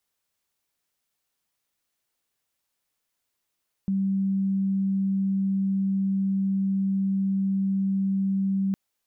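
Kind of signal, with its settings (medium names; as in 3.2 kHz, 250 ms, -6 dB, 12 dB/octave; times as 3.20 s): tone sine 194 Hz -21.5 dBFS 4.86 s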